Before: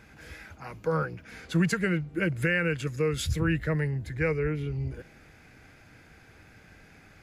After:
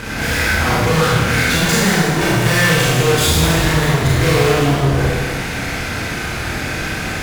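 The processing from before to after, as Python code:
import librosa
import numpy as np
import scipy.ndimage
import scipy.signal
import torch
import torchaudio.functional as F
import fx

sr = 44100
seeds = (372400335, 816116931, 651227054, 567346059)

y = fx.fuzz(x, sr, gain_db=49.0, gate_db=-57.0)
y = fx.rev_schroeder(y, sr, rt60_s=1.6, comb_ms=25, drr_db=-7.0)
y = F.gain(torch.from_numpy(y), -7.0).numpy()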